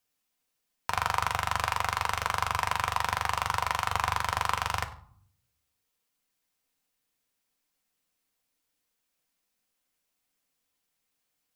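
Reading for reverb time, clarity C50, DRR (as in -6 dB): 0.55 s, 14.0 dB, 4.0 dB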